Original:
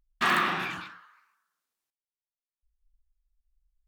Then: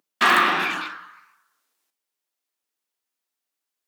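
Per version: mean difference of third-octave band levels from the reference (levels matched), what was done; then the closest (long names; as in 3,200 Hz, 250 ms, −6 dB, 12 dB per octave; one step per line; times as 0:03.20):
3.0 dB: in parallel at −1 dB: downward compressor, threshold −36 dBFS, peak gain reduction 14.5 dB
on the sum: high-pass filter 230 Hz 24 dB per octave
rectangular room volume 460 cubic metres, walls furnished, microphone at 0.43 metres
level +6 dB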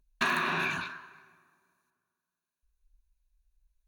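4.5 dB: EQ curve with evenly spaced ripples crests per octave 1.5, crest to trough 10 dB
downward compressor, threshold −28 dBFS, peak gain reduction 9 dB
dense smooth reverb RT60 2.1 s, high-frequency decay 0.65×, DRR 17 dB
level +2.5 dB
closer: first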